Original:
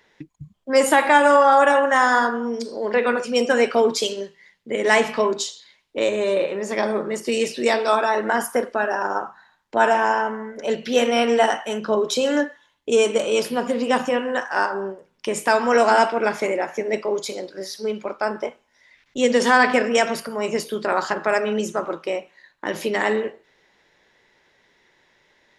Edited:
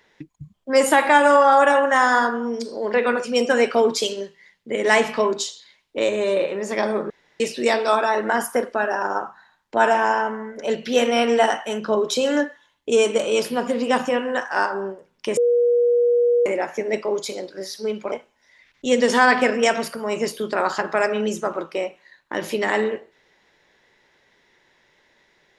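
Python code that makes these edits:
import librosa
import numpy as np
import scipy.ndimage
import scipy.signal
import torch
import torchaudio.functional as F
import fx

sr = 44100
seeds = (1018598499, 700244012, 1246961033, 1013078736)

y = fx.edit(x, sr, fx.room_tone_fill(start_s=7.1, length_s=0.3),
    fx.bleep(start_s=15.37, length_s=1.09, hz=480.0, db=-14.0),
    fx.cut(start_s=18.12, length_s=0.32), tone=tone)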